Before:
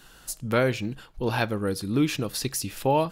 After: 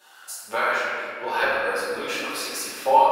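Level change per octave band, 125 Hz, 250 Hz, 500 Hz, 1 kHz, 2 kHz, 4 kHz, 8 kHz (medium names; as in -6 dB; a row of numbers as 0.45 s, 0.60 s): -24.5 dB, -12.0 dB, +1.5 dB, +9.5 dB, +8.5 dB, +2.0 dB, 0.0 dB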